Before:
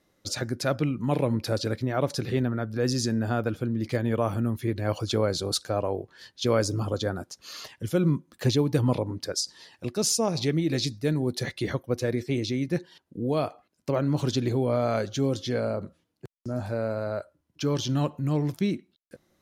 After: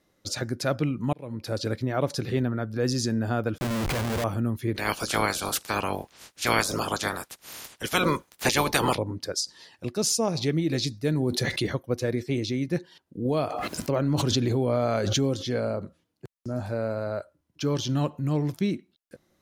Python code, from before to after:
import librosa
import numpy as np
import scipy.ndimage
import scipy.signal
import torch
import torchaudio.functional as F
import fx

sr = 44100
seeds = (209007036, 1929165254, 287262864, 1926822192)

y = fx.schmitt(x, sr, flips_db=-40.5, at=(3.58, 4.24))
y = fx.spec_clip(y, sr, under_db=30, at=(4.74, 8.95), fade=0.02)
y = fx.env_flatten(y, sr, amount_pct=70, at=(11.13, 11.67))
y = fx.pre_swell(y, sr, db_per_s=21.0, at=(13.25, 15.46))
y = fx.edit(y, sr, fx.fade_in_span(start_s=1.13, length_s=0.55), tone=tone)